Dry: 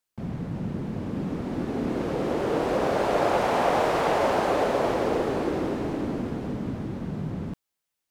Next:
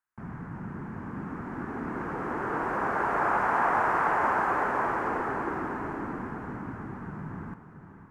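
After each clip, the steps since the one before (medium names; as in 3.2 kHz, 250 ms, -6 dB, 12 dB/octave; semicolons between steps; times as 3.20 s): FFT filter 390 Hz 0 dB, 560 Hz -6 dB, 930 Hz +10 dB, 1.6 kHz +13 dB, 3.7 kHz -15 dB, 6.7 kHz -6 dB; echo that smears into a reverb 546 ms, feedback 42%, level -11 dB; trim -7.5 dB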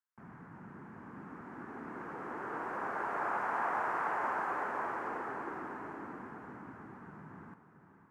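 high-pass 250 Hz 6 dB/octave; trim -8.5 dB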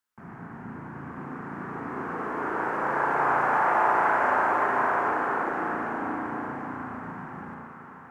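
on a send: two-band feedback delay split 520 Hz, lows 237 ms, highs 779 ms, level -10.5 dB; on the sum: spring tank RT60 2 s, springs 35 ms, chirp 30 ms, DRR 0 dB; trim +8 dB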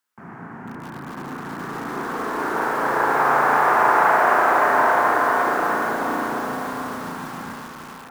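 high-pass 160 Hz 6 dB/octave; bit-crushed delay 425 ms, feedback 35%, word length 7-bit, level -3.5 dB; trim +5.5 dB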